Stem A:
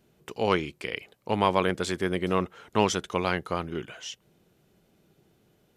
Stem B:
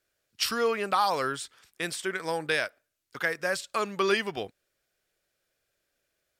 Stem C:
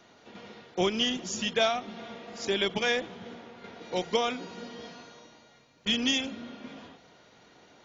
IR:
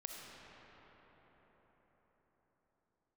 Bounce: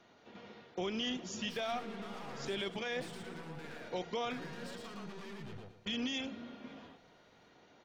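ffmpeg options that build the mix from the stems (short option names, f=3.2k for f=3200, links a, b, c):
-filter_complex "[1:a]bass=f=250:g=13,treble=f=4k:g=-2,acompressor=threshold=-26dB:ratio=6,aeval=exprs='(tanh(112*val(0)+0.4)-tanh(0.4))/112':c=same,adelay=1100,volume=-1.5dB,asplit=2[a][b];[b]volume=-7dB[c];[2:a]volume=-5.5dB[d];[a]equalizer=f=620:w=1.3:g=-12,alimiter=level_in=18.5dB:limit=-24dB:level=0:latency=1,volume=-18.5dB,volume=0dB[e];[c]aecho=0:1:115|230|345|460:1|0.3|0.09|0.027[f];[d][e][f]amix=inputs=3:normalize=0,highshelf=f=6.5k:g=-10.5,alimiter=level_in=4dB:limit=-24dB:level=0:latency=1:release=16,volume=-4dB"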